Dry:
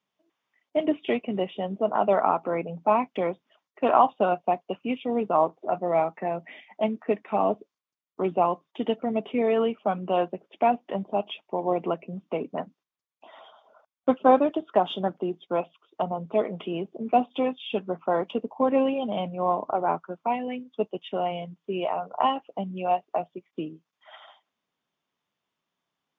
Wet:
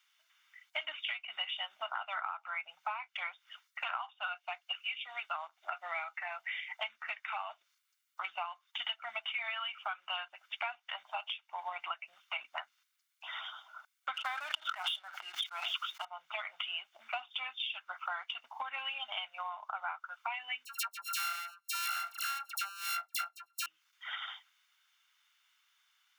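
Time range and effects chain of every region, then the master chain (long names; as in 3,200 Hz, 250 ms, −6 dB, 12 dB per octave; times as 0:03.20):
0:04.27–0:06.21: Butterworth high-pass 260 Hz 72 dB per octave + parametric band 970 Hz −6.5 dB 1 octave
0:14.14–0:16.05: leveller curve on the samples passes 1 + level that may fall only so fast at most 21 dB per second
0:20.65–0:23.66: samples sorted by size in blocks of 32 samples + amplitude tremolo 1.6 Hz, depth 71% + all-pass dispersion lows, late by 74 ms, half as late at 1,600 Hz
whole clip: inverse Chebyshev high-pass filter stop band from 490 Hz, stop band 50 dB; downward compressor 8 to 1, threshold −49 dBFS; comb filter 1.4 ms, depth 38%; level +13 dB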